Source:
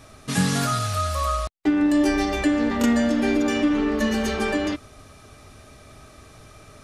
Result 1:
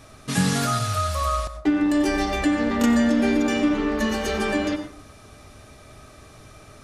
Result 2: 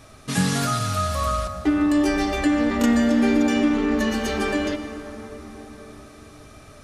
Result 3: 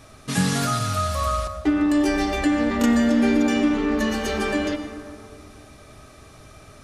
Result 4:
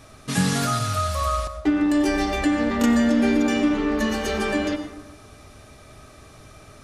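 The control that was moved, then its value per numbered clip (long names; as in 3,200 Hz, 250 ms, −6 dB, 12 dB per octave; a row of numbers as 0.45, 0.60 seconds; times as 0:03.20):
dense smooth reverb, RT60: 0.53, 5.2, 2.4, 1.1 seconds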